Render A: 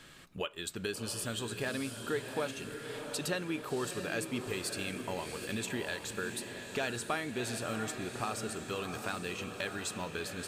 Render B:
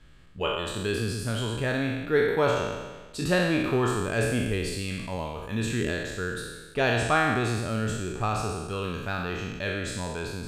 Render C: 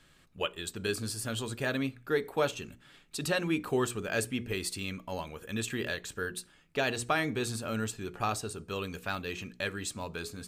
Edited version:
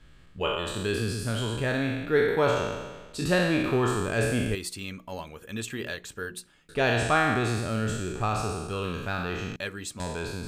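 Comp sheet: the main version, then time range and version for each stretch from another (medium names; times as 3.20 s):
B
4.55–6.69 s: from C
9.56–10.00 s: from C
not used: A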